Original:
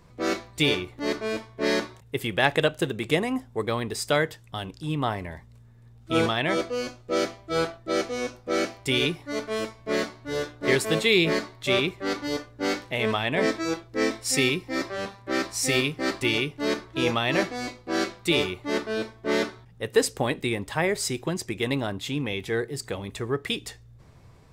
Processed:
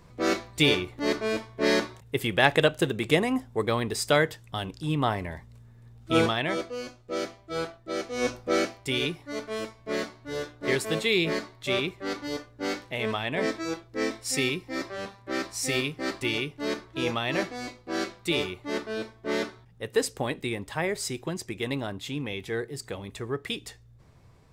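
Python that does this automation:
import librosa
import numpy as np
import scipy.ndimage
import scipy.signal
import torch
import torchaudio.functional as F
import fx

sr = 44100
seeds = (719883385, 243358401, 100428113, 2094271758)

y = fx.gain(x, sr, db=fx.line((6.16, 1.0), (6.68, -6.0), (8.09, -6.0), (8.28, 6.0), (8.81, -4.0)))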